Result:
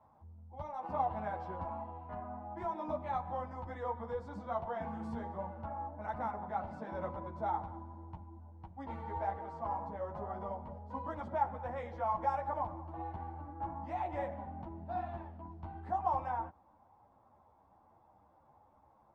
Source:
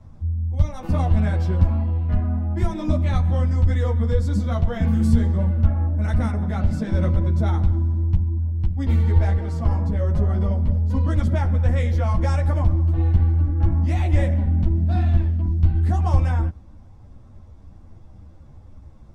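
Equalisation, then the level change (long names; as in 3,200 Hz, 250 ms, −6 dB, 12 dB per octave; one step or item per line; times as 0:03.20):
resonant band-pass 870 Hz, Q 3.9
+2.0 dB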